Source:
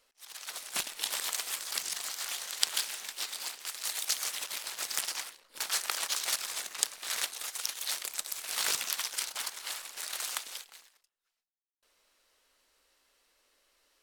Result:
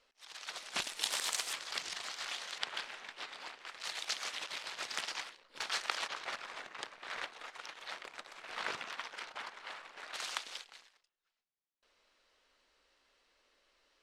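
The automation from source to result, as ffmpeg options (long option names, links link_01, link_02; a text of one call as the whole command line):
ffmpeg -i in.wav -af "asetnsamples=nb_out_samples=441:pad=0,asendcmd='0.82 lowpass f 8300;1.53 lowpass f 4100;2.58 lowpass f 2300;3.8 lowpass f 3900;6.08 lowpass f 2000;10.14 lowpass f 4700',lowpass=4800" out.wav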